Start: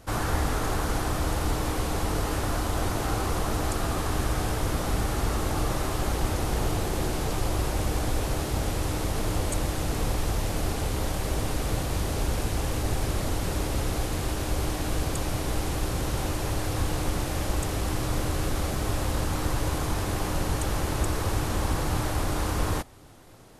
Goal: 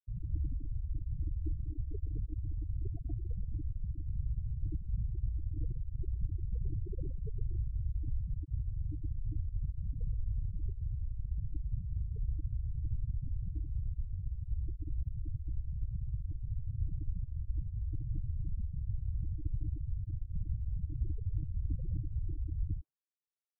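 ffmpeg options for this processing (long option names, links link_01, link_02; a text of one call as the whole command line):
ffmpeg -i in.wav -filter_complex "[0:a]afftfilt=real='re*gte(hypot(re,im),0.224)':imag='im*gte(hypot(re,im),0.224)':win_size=1024:overlap=0.75,aemphasis=mode=reproduction:type=cd,acrossover=split=690[link_01][link_02];[link_02]adelay=120[link_03];[link_01][link_03]amix=inputs=2:normalize=0,volume=-6.5dB" out.wav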